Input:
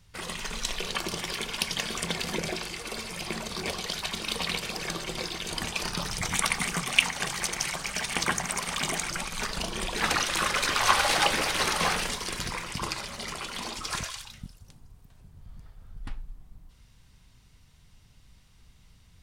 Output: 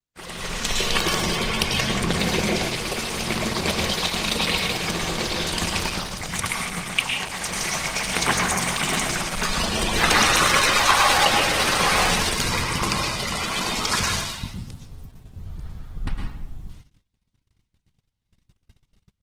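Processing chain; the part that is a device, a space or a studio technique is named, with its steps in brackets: 1.22–2.12 tilt -1.5 dB/oct; speakerphone in a meeting room (reverb RT60 0.75 s, pre-delay 0.104 s, DRR 1 dB; speakerphone echo 90 ms, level -15 dB; AGC gain up to 10 dB; gate -38 dBFS, range -35 dB; gain -1 dB; Opus 16 kbps 48000 Hz)

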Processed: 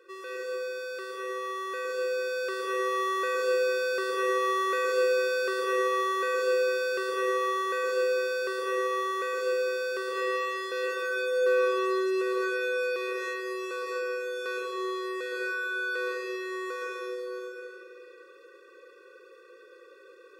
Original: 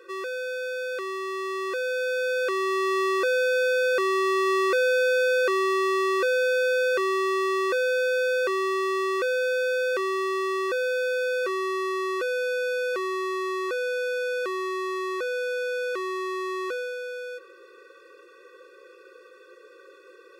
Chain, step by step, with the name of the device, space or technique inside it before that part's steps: tunnel (flutter echo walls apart 9.2 m, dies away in 0.28 s; reverb RT60 2.5 s, pre-delay 0.109 s, DRR -3 dB); gain -8 dB

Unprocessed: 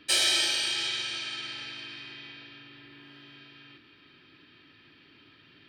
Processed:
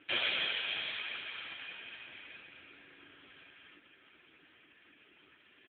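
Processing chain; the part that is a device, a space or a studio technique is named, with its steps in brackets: 0.79–2.28 HPF 75 Hz 24 dB/oct; satellite phone (BPF 370–3300 Hz; echo 0.514 s -14 dB; gain +1.5 dB; AMR-NB 5.9 kbps 8000 Hz)

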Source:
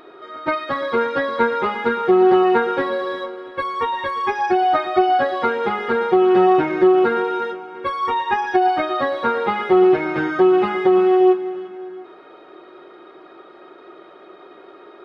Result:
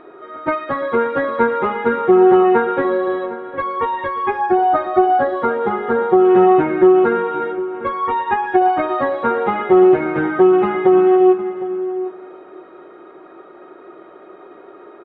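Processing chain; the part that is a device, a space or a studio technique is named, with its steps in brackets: shout across a valley (air absorption 500 m; outdoor echo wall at 130 m, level -14 dB); 4.37–6.25 bell 2500 Hz -8 dB 0.62 oct; gain +4 dB

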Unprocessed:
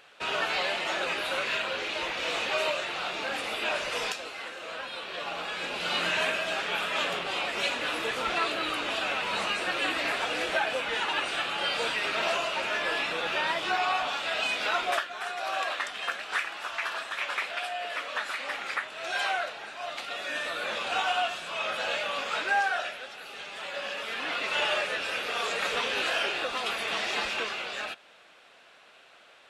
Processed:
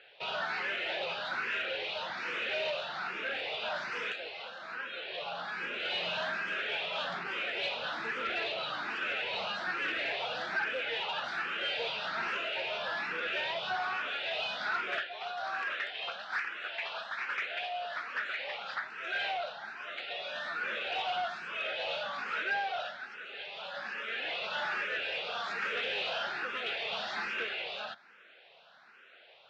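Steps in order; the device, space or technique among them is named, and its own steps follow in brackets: barber-pole phaser into a guitar amplifier (endless phaser +1.2 Hz; soft clip -28.5 dBFS, distortion -14 dB; speaker cabinet 110–4500 Hz, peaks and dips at 290 Hz -8 dB, 1100 Hz -5 dB, 1500 Hz +4 dB)

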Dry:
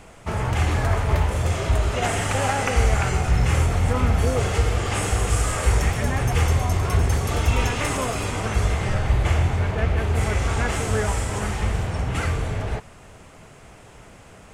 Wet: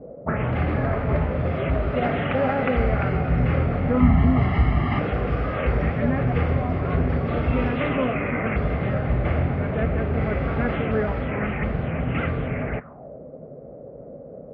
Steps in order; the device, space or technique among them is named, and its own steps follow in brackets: high shelf 7000 Hz -10.5 dB; 4–4.99 comb 1 ms, depth 92%; envelope filter bass rig (envelope low-pass 460–4900 Hz up, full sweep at -18.5 dBFS; speaker cabinet 63–2100 Hz, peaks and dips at 94 Hz -8 dB, 150 Hz +8 dB, 250 Hz +9 dB, 560 Hz +6 dB, 930 Hz -8 dB, 1700 Hz -3 dB)

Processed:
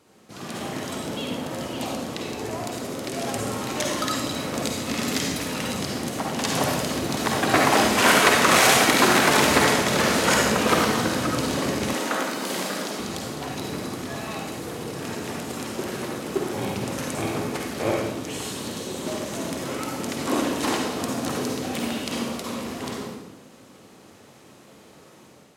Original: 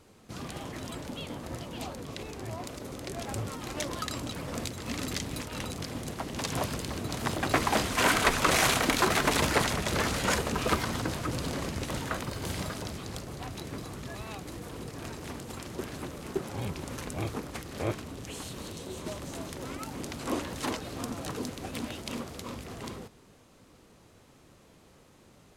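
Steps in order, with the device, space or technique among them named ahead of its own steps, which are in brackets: far laptop microphone (reverb RT60 1.0 s, pre-delay 45 ms, DRR -1 dB; HPF 160 Hz 12 dB/oct; AGC gain up to 6 dB); 11.93–13 HPF 210 Hz 24 dB/oct

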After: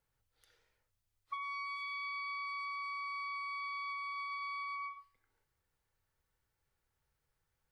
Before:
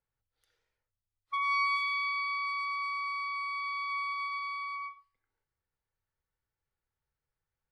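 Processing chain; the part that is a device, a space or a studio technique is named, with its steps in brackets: serial compression, peaks first (compressor, threshold -40 dBFS, peak gain reduction 13.5 dB; compressor 3:1, threshold -46 dBFS, peak gain reduction 7 dB); gain +6 dB

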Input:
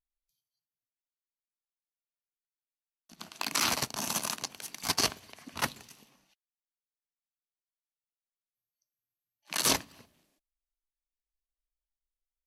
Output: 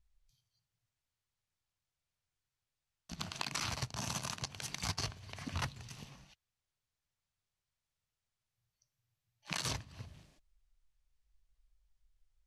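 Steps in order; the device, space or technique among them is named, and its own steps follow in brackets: jukebox (LPF 7400 Hz 12 dB/oct; resonant low shelf 170 Hz +13.5 dB, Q 1.5; compressor 6:1, threshold -44 dBFS, peak gain reduction 21 dB); gain +7.5 dB

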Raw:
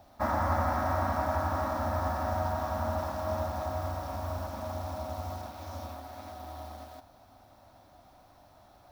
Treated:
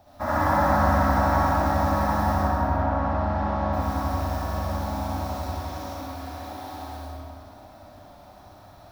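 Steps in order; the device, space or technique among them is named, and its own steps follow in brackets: 2.35–3.72 LPF 1700 Hz -> 3300 Hz 12 dB/oct; tunnel (flutter echo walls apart 10.8 m, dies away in 0.66 s; reverb RT60 2.4 s, pre-delay 51 ms, DRR -7.5 dB)

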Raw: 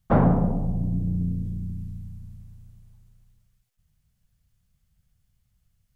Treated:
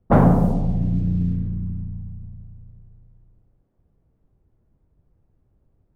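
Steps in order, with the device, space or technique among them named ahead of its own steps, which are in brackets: cassette deck with a dynamic noise filter (white noise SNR 31 dB; low-pass opened by the level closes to 320 Hz, open at -17 dBFS); gain +4.5 dB

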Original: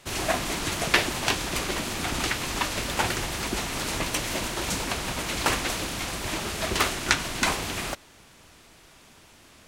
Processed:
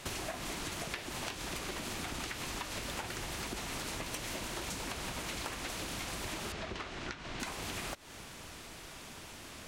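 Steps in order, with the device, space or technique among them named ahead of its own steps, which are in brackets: serial compression, peaks first (compressor, threshold -35 dBFS, peak gain reduction 18.5 dB; compressor 2.5:1, threshold -44 dBFS, peak gain reduction 9.5 dB); 6.52–7.4 air absorption 130 m; gain +4.5 dB

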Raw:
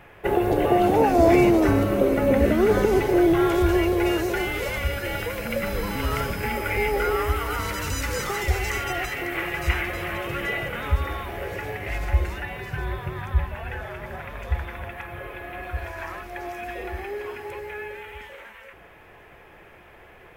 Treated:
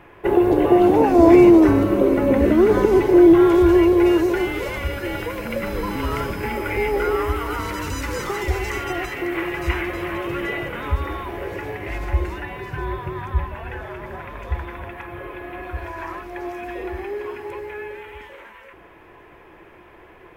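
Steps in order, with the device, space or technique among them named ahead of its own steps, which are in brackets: inside a helmet (high shelf 4900 Hz -4.5 dB; small resonant body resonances 330/1000 Hz, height 9 dB, ringing for 30 ms)

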